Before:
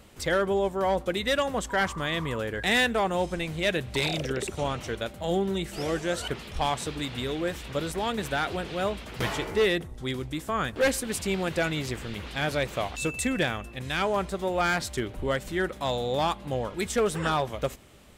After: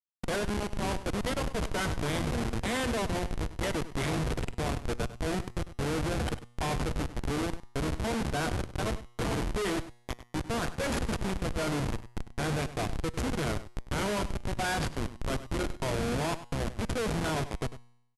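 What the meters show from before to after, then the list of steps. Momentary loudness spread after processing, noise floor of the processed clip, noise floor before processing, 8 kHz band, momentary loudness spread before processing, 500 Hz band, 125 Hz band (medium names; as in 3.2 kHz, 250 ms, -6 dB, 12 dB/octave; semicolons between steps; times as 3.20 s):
5 LU, -57 dBFS, -44 dBFS, -3.0 dB, 7 LU, -6.5 dB, +1.0 dB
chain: median filter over 3 samples; rippled EQ curve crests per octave 1.8, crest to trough 12 dB; transient shaper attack 0 dB, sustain +4 dB; Schmitt trigger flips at -24.5 dBFS; vibrato 0.49 Hz 81 cents; brick-wall FIR low-pass 12 kHz; feedback comb 120 Hz, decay 0.82 s, harmonics all, mix 40%; echo from a far wall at 17 m, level -14 dB; trim +1.5 dB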